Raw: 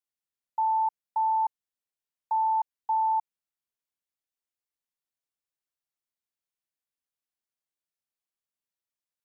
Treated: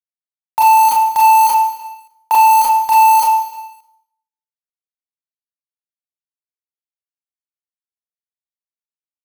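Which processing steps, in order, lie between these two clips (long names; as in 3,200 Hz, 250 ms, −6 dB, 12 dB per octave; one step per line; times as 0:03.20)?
camcorder AGC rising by 15 dB per second
dynamic equaliser 790 Hz, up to −6 dB, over −41 dBFS, Q 5.7
in parallel at +2 dB: downward compressor 6 to 1, threshold −59 dBFS, peak gain reduction 29 dB
on the sum: bit-depth reduction 6 bits, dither none
on a send: repeating echo 304 ms, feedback 33%, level −23 dB
on the sum: four-comb reverb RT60 0.64 s, combs from 25 ms, DRR −7.5 dB
leveller curve on the samples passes 2
level +7 dB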